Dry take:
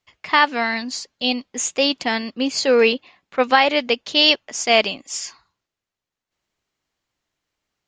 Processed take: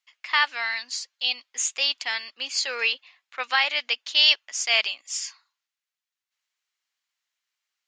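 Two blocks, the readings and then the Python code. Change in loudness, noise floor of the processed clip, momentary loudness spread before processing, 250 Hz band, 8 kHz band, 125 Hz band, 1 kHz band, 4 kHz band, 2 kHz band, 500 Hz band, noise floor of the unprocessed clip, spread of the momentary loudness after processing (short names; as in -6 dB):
-4.5 dB, under -85 dBFS, 13 LU, under -30 dB, -2.0 dB, n/a, -11.0 dB, -2.0 dB, -3.0 dB, -20.0 dB, under -85 dBFS, 13 LU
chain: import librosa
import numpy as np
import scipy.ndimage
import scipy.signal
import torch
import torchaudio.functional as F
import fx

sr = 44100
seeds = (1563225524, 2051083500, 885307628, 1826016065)

y = scipy.signal.sosfilt(scipy.signal.butter(2, 1500.0, 'highpass', fs=sr, output='sos'), x)
y = y * 10.0 ** (-2.0 / 20.0)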